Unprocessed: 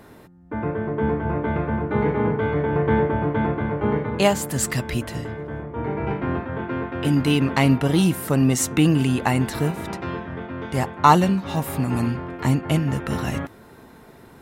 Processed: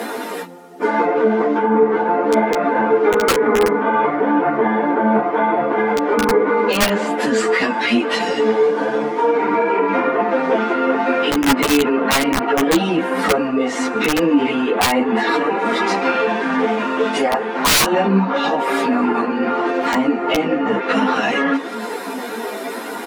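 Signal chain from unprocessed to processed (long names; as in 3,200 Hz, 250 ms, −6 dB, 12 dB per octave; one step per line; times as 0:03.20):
mu-law and A-law mismatch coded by mu
treble cut that deepens with the level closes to 1,900 Hz, closed at −18 dBFS
high-pass filter 290 Hz 24 dB per octave
comb filter 4.2 ms, depth 49%
in parallel at +0.5 dB: downward compressor 4 to 1, threshold −36 dBFS, peak gain reduction 22.5 dB
on the sum: time stretch by phase vocoder 1.6×
four-comb reverb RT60 2 s, combs from 29 ms, DRR 19.5 dB
wrap-around overflow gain 15 dB
boost into a limiter +21.5 dB
string-ensemble chorus
level −4.5 dB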